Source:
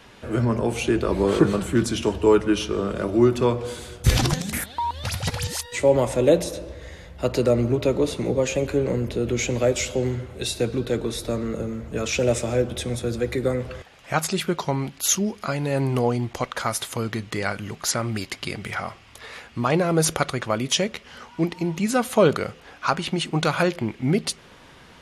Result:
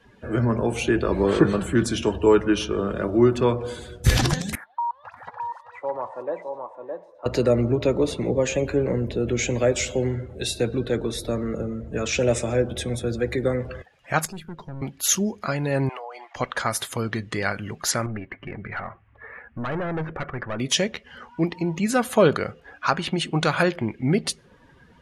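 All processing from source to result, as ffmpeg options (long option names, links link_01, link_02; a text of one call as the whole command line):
ffmpeg -i in.wav -filter_complex "[0:a]asettb=1/sr,asplit=3[link_01][link_02][link_03];[link_01]atrim=end=4.554[link_04];[link_02]atrim=start=4.55:end=7.26,asetpts=PTS-STARTPTS,afade=type=in:duration=0.004:curve=qsin,afade=type=out:start_time=2.706:duration=0.004:curve=qsin,bandpass=frequency=1000:width_type=q:width=2.9,aecho=1:1:614:0.596,atrim=end_sample=119511[link_05];[link_03]atrim=start=7.256[link_06];[link_04][link_05]acrossfade=duration=0.004:curve1=hsin:curve2=qsin[link_07];[link_07][link_06]acrossfade=duration=0.004:curve1=qsin:curve2=hsin,asettb=1/sr,asplit=3[link_08][link_09][link_10];[link_08]atrim=end=14.254[link_11];[link_09]atrim=start=14.25:end=14.82,asetpts=PTS-STARTPTS,afade=type=in:duration=0.004:curve=qsin,afade=type=out:start_time=0.566:duration=0.004:curve=qsin,acrossover=split=270|620[link_12][link_13][link_14];[link_12]acompressor=threshold=-26dB:ratio=4[link_15];[link_13]acompressor=threshold=-37dB:ratio=4[link_16];[link_14]acompressor=threshold=-38dB:ratio=4[link_17];[link_15][link_16][link_17]amix=inputs=3:normalize=0,aeval=exprs='(tanh(39.8*val(0)+0.6)-tanh(0.6))/39.8':channel_layout=same[link_18];[link_10]atrim=start=14.816[link_19];[link_11][link_18]acrossfade=duration=0.004:curve1=hsin:curve2=qsin[link_20];[link_20][link_19]acrossfade=duration=0.004:curve1=qsin:curve2=hsin,asettb=1/sr,asplit=3[link_21][link_22][link_23];[link_21]atrim=end=15.894[link_24];[link_22]atrim=start=15.89:end=16.36,asetpts=PTS-STARTPTS,afade=type=in:duration=0.004:curve=qsin,afade=type=out:start_time=0.466:duration=0.004:curve=qsin,highpass=frequency=580:width=0.5412,highpass=frequency=580:width=1.3066,acompressor=threshold=-34dB:ratio=6:attack=3.2:release=140:knee=1:detection=peak,asplit=2[link_25][link_26];[link_26]highpass=frequency=720:poles=1,volume=9dB,asoftclip=type=tanh:threshold=-18dB[link_27];[link_25][link_27]amix=inputs=2:normalize=0,lowpass=frequency=2700:poles=1,volume=-6dB[link_28];[link_23]atrim=start=16.356[link_29];[link_24][link_28]acrossfade=duration=0.004:curve1=hsin:curve2=qsin[link_30];[link_30][link_29]acrossfade=duration=0.004:curve1=qsin:curve2=hsin,asettb=1/sr,asplit=3[link_31][link_32][link_33];[link_31]atrim=end=18.064[link_34];[link_32]atrim=start=18.06:end=20.59,asetpts=PTS-STARTPTS,afade=type=in:duration=0.004:curve=qsin,afade=type=out:start_time=2.526:duration=0.004:curve=qsin,lowpass=frequency=2200:width=0.5412,lowpass=frequency=2200:width=1.3066,aeval=exprs='(tanh(17.8*val(0)+0.35)-tanh(0.35))/17.8':channel_layout=same[link_35];[link_33]atrim=start=20.586[link_36];[link_34][link_35]acrossfade=duration=0.004:curve1=hsin:curve2=qsin[link_37];[link_37][link_36]acrossfade=duration=0.004:curve1=qsin:curve2=hsin,afftdn=noise_reduction=15:noise_floor=-43,equalizer=frequency=1700:width_type=o:width=0.2:gain=6.5" out.wav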